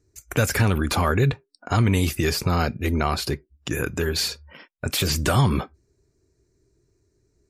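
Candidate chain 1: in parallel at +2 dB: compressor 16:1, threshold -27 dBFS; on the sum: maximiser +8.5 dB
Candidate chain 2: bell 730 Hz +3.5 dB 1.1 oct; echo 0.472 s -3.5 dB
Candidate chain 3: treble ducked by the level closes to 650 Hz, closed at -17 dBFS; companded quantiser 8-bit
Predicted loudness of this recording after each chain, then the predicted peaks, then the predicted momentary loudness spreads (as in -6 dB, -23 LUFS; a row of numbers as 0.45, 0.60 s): -12.5, -21.5, -25.0 LUFS; -1.0, -5.5, -10.0 dBFS; 9, 6, 12 LU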